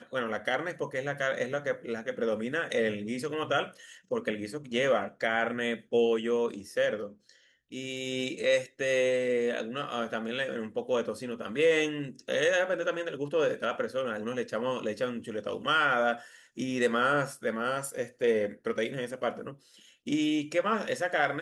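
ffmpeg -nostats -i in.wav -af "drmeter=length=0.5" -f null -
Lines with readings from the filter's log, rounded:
Channel 1: DR: 10.7
Overall DR: 10.7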